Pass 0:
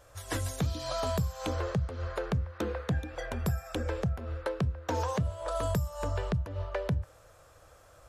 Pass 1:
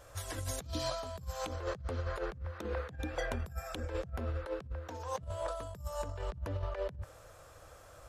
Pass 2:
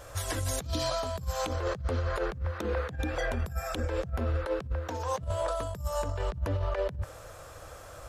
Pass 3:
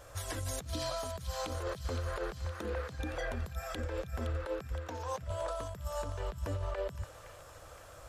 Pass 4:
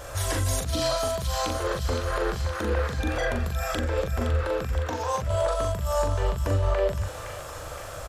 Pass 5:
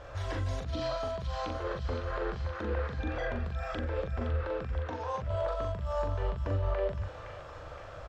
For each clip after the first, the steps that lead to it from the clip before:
compressor with a negative ratio -35 dBFS, ratio -0.5; trim -2 dB
peak limiter -30 dBFS, peak gain reduction 7.5 dB; trim +8.5 dB
feedback echo behind a high-pass 516 ms, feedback 58%, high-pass 1.6 kHz, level -8 dB; trim -6 dB
in parallel at +3 dB: peak limiter -36.5 dBFS, peak gain reduction 10.5 dB; on the sum: doubling 41 ms -4 dB; trim +5.5 dB
distance through air 210 m; trim -6.5 dB

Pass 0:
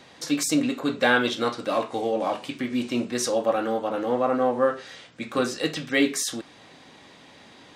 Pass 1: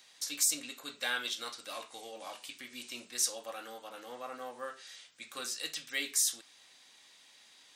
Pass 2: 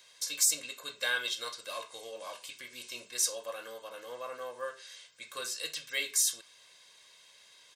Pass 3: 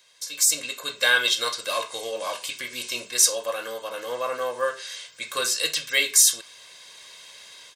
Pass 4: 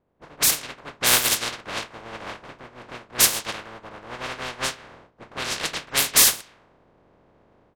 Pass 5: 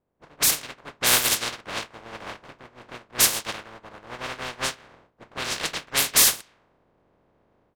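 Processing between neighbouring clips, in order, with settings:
pre-emphasis filter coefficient 0.97
comb 1.9 ms, depth 67%
level rider gain up to 13 dB
spectral contrast reduction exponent 0.12; level-controlled noise filter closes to 510 Hz, open at -18 dBFS; trim +2.5 dB
waveshaping leveller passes 1; trim -4.5 dB

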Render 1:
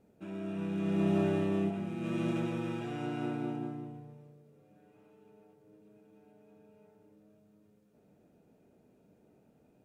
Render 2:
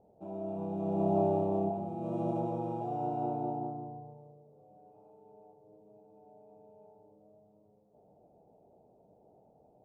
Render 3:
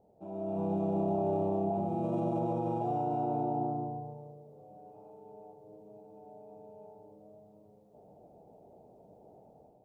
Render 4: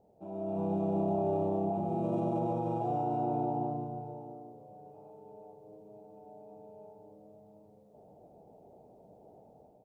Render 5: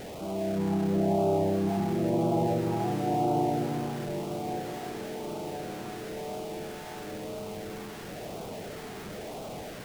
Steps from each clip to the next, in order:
FFT filter 120 Hz 0 dB, 260 Hz -5 dB, 800 Hz +12 dB, 1.7 kHz -26 dB, 4.4 kHz -15 dB
peak limiter -30 dBFS, peak gain reduction 11 dB; level rider gain up to 7.5 dB; trim -1.5 dB
delay 665 ms -14.5 dB
jump at every zero crossing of -38.5 dBFS; LFO notch sine 0.98 Hz 540–1800 Hz; echo that smears into a reverb 1213 ms, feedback 61%, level -10.5 dB; trim +4 dB

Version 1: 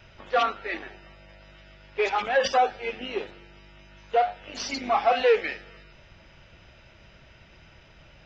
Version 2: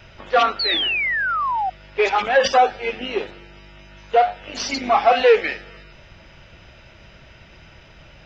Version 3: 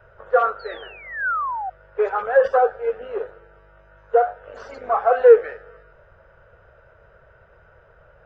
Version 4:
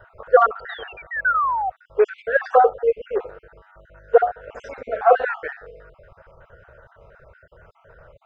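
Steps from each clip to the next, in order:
painted sound fall, 0.59–1.70 s, 730–4600 Hz -28 dBFS; trim +6.5 dB
FFT filter 110 Hz 0 dB, 300 Hz -15 dB, 460 Hz +12 dB, 820 Hz +1 dB, 1.5 kHz +8 dB, 2.2 kHz -13 dB, 5.7 kHz -22 dB, 8.7 kHz -6 dB; trim -7.5 dB
random holes in the spectrogram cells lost 41%; trim +4.5 dB

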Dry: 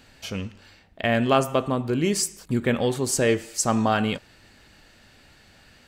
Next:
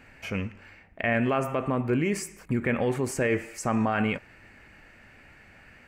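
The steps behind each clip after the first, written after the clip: peak limiter -17 dBFS, peak gain reduction 9 dB; resonant high shelf 2.9 kHz -8 dB, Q 3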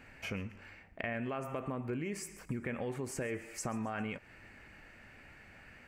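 compression 4:1, threshold -33 dBFS, peak gain reduction 10.5 dB; feedback echo behind a high-pass 133 ms, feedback 43%, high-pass 5.4 kHz, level -17 dB; trim -3 dB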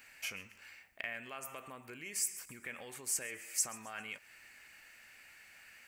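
pre-emphasis filter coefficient 0.97; trim +10.5 dB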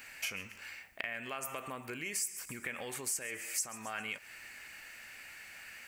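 compression 3:1, threshold -43 dBFS, peak gain reduction 12 dB; trim +7.5 dB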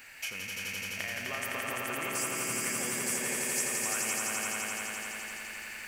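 echo with a slow build-up 85 ms, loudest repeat 5, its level -3 dB

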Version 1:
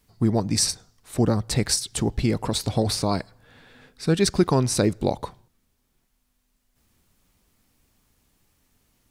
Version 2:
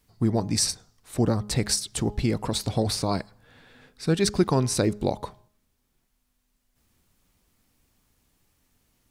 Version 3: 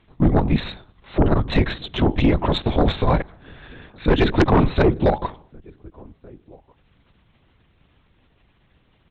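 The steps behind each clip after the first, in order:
de-hum 207.9 Hz, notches 6; trim -2 dB
echo from a far wall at 250 m, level -29 dB; LPC vocoder at 8 kHz whisper; Chebyshev shaper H 4 -6 dB, 5 -7 dB, 6 -7 dB, 8 -13 dB, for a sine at -7.5 dBFS

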